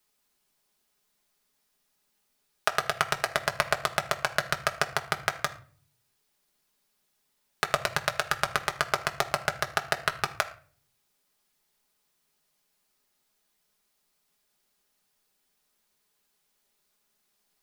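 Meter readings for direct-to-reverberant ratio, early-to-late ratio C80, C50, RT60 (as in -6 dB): 2.5 dB, 18.0 dB, 14.5 dB, 0.45 s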